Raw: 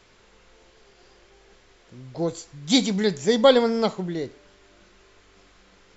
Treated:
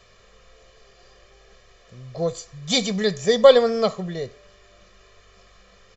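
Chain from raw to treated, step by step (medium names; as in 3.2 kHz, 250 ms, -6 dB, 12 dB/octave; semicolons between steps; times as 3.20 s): comb 1.7 ms, depth 78%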